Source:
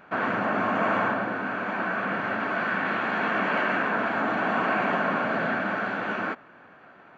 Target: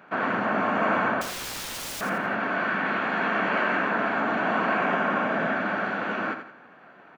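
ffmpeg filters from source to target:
-filter_complex "[0:a]highpass=f=120:w=0.5412,highpass=f=120:w=1.3066,asettb=1/sr,asplit=3[s0][s1][s2];[s0]atrim=end=1.214[s3];[s1]atrim=start=1.21:end=2.01,asetpts=PTS-STARTPTS,afade=t=in:d=0.004:c=qsin,afade=t=out:st=0.796:d=0.004:c=qsin,aeval=exprs='(mod(33.5*val(0)+1,2)-1)/33.5':c=same[s4];[s2]atrim=start=2.006[s5];[s3][s4]acrossfade=d=0.004:c1=hsin:c2=qsin[s6];[s6][s5]acrossfade=d=0.004:c1=qsin:c2=hsin,asettb=1/sr,asplit=3[s7][s8][s9];[s7]atrim=end=4.774[s10];[s8]atrim=start=4.77:end=5.56,asetpts=PTS-STARTPTS,afade=t=in:d=0.004:c=qsin,afade=t=out:st=0.786:d=0.004:c=qsin,bandreject=f=4300:w=8.3[s11];[s9]atrim=start=5.556[s12];[s10][s11]acrossfade=d=0.004:c1=hsin:c2=qsin[s13];[s13][s12]acrossfade=d=0.004:c1=qsin:c2=hsin,aecho=1:1:86|172|258|344:0.355|0.128|0.046|0.0166"

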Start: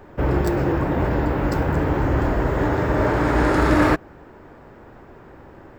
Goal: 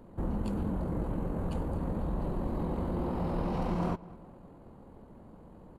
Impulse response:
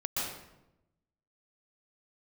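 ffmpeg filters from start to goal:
-filter_complex "[0:a]acompressor=threshold=0.0708:ratio=2.5,asetrate=25476,aresample=44100,atempo=1.73107,asplit=2[s0][s1];[s1]adelay=207,lowpass=f=2900:p=1,volume=0.1,asplit=2[s2][s3];[s3]adelay=207,lowpass=f=2900:p=1,volume=0.51,asplit=2[s4][s5];[s5]adelay=207,lowpass=f=2900:p=1,volume=0.51,asplit=2[s6][s7];[s7]adelay=207,lowpass=f=2900:p=1,volume=0.51[s8];[s0][s2][s4][s6][s8]amix=inputs=5:normalize=0,volume=0.447"

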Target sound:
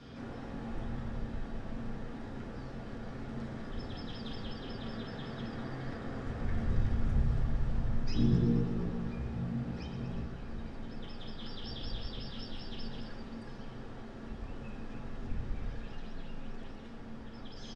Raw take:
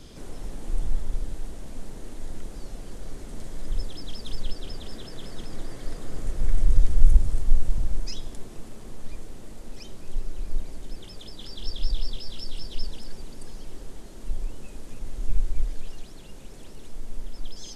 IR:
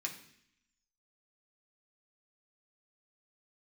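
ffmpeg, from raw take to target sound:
-filter_complex "[0:a]lowpass=2500,asplit=3[s0][s1][s2];[s0]afade=t=out:st=8.14:d=0.02[s3];[s1]asplit=9[s4][s5][s6][s7][s8][s9][s10][s11][s12];[s5]adelay=119,afreqshift=57,volume=0.335[s13];[s6]adelay=238,afreqshift=114,volume=0.214[s14];[s7]adelay=357,afreqshift=171,volume=0.136[s15];[s8]adelay=476,afreqshift=228,volume=0.0881[s16];[s9]adelay=595,afreqshift=285,volume=0.0562[s17];[s10]adelay=714,afreqshift=342,volume=0.0359[s18];[s11]adelay=833,afreqshift=399,volume=0.0229[s19];[s12]adelay=952,afreqshift=456,volume=0.0148[s20];[s4][s13][s14][s15][s16][s17][s18][s19][s20]amix=inputs=9:normalize=0,afade=t=in:st=8.14:d=0.02,afade=t=out:st=10.23:d=0.02[s21];[s2]afade=t=in:st=10.23:d=0.02[s22];[s3][s21][s22]amix=inputs=3:normalize=0[s23];[1:a]atrim=start_sample=2205,asetrate=31311,aresample=44100[s24];[s23][s24]afir=irnorm=-1:irlink=0"

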